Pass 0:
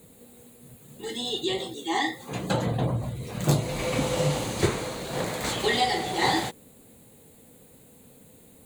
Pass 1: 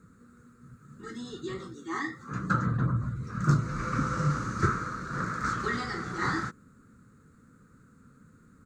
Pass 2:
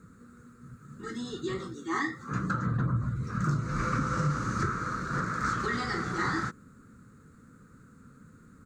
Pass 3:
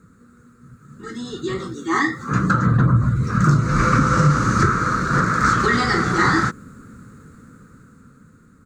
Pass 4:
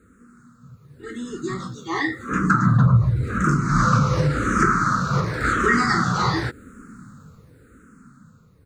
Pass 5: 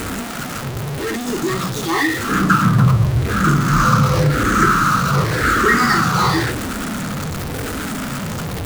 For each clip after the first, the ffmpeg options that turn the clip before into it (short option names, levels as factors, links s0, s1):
-af "firequalizer=gain_entry='entry(200,0);entry(510,-14);entry(770,-22);entry(1300,14);entry(2000,-9);entry(3100,-23);entry(5500,-5);entry(11000,-29)':delay=0.05:min_phase=1"
-af "alimiter=limit=0.0794:level=0:latency=1:release=270,volume=1.41"
-af "dynaudnorm=f=370:g=9:m=3.35,volume=1.33"
-filter_complex "[0:a]asplit=2[s0][s1];[s1]afreqshift=-0.91[s2];[s0][s2]amix=inputs=2:normalize=1,volume=1.12"
-af "aeval=exprs='val(0)+0.5*0.0891*sgn(val(0))':c=same,bandreject=f=60:t=h:w=6,bandreject=f=120:t=h:w=6,bandreject=f=180:t=h:w=6,bandreject=f=240:t=h:w=6,volume=1.33"